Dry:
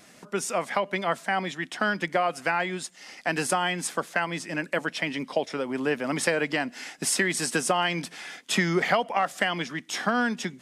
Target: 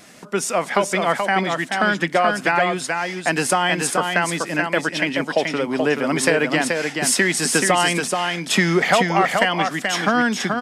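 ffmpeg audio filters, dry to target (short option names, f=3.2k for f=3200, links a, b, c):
-af "acontrast=77,aecho=1:1:430:0.596"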